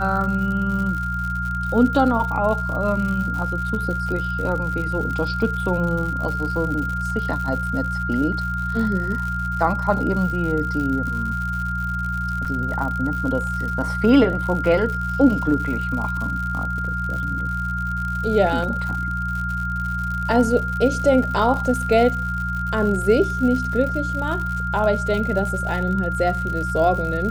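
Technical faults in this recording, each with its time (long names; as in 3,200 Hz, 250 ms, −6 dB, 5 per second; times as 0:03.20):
surface crackle 110 per second −28 dBFS
mains hum 60 Hz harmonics 3 −27 dBFS
whistle 1,400 Hz −25 dBFS
0:12.45–0:12.46: drop-out 5.3 ms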